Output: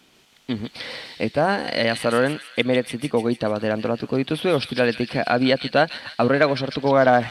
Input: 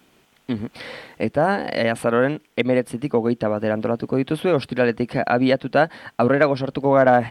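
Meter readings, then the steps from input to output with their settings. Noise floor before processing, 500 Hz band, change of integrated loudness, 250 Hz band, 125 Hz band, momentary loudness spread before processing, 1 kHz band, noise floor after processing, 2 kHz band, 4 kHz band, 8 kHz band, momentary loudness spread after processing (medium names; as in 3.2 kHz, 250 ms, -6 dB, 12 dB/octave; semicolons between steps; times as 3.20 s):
-60 dBFS, -1.5 dB, -1.0 dB, -1.5 dB, -1.5 dB, 11 LU, -1.0 dB, -56 dBFS, +1.0 dB, +6.5 dB, no reading, 11 LU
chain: on a send: feedback echo behind a high-pass 150 ms, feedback 58%, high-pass 3.3 kHz, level -3 dB; on the sum: resampled via 32 kHz; peaking EQ 4.3 kHz +8 dB 1.6 oct; trim -1.5 dB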